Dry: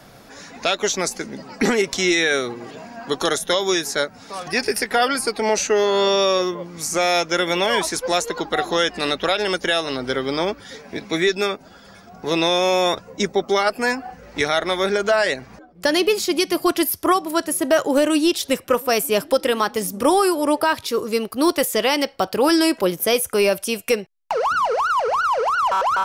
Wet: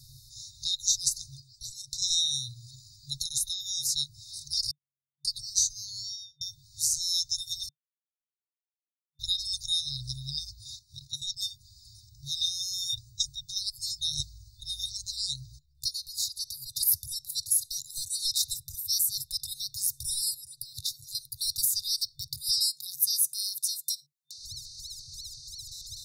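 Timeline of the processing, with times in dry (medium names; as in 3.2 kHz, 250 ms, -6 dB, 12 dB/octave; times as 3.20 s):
1.40–2.02 s: gain -8 dB
3.22–3.84 s: compression 5:1, threshold -20 dBFS
4.71–5.25 s: bleep 352 Hz -20.5 dBFS
5.97–6.41 s: studio fade out
7.69–9.19 s: mute
10.76–11.37 s: level held to a coarse grid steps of 10 dB
14.01–14.60 s: reverse
15.88–16.75 s: compression 2.5:1, threshold -26 dBFS
17.53–17.99 s: peaking EQ 140 Hz -11 dB 2.4 oct
20.34–21.15 s: compression 10:1, threshold -24 dBFS
22.58–24.38 s: brick-wall FIR high-pass 150 Hz
whole clip: FFT band-reject 150–3600 Hz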